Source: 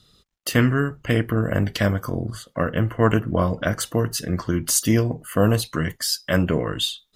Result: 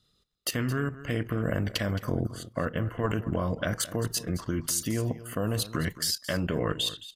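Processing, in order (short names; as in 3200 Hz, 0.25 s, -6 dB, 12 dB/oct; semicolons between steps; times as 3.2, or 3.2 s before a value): level quantiser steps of 14 dB; echo 0.219 s -15.5 dB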